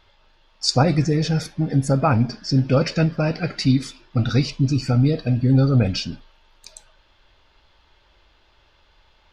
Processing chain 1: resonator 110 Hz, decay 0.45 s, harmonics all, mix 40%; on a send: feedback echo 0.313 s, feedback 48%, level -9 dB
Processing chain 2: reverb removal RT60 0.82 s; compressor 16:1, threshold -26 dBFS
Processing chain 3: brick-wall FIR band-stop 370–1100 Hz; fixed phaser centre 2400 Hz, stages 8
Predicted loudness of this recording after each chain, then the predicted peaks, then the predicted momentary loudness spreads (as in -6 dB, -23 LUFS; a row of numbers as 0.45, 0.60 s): -23.5, -32.0, -22.5 LUFS; -7.5, -15.5, -6.5 dBFS; 10, 7, 6 LU